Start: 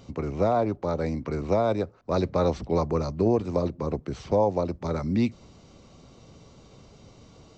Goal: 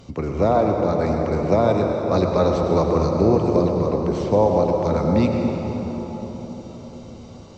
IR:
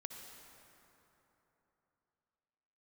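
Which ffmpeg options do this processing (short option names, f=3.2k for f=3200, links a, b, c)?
-filter_complex "[1:a]atrim=start_sample=2205,asetrate=29106,aresample=44100[a];[0:a][a]afir=irnorm=-1:irlink=0,volume=7.5dB"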